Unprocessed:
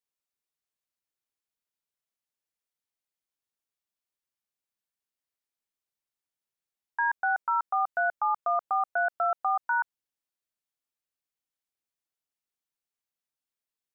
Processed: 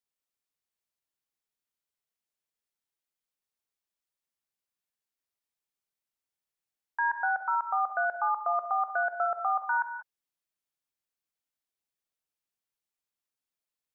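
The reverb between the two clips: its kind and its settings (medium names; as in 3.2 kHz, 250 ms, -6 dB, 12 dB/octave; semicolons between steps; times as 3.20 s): gated-style reverb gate 210 ms rising, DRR 6.5 dB; trim -1.5 dB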